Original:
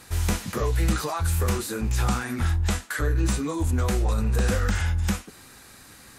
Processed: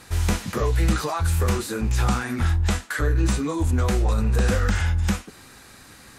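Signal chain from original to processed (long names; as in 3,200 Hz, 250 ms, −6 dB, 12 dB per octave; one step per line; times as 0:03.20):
high-shelf EQ 9,300 Hz −7 dB
level +2.5 dB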